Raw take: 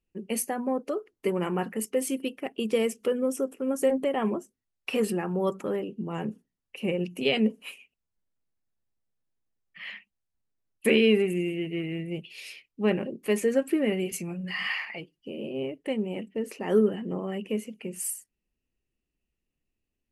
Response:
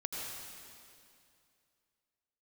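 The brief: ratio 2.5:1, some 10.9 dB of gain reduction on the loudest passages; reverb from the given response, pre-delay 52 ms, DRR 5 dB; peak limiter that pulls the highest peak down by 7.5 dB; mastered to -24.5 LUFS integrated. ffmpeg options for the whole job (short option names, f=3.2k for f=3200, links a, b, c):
-filter_complex "[0:a]acompressor=threshold=-34dB:ratio=2.5,alimiter=level_in=3.5dB:limit=-24dB:level=0:latency=1,volume=-3.5dB,asplit=2[a][b];[1:a]atrim=start_sample=2205,adelay=52[c];[b][c]afir=irnorm=-1:irlink=0,volume=-7dB[d];[a][d]amix=inputs=2:normalize=0,volume=12dB"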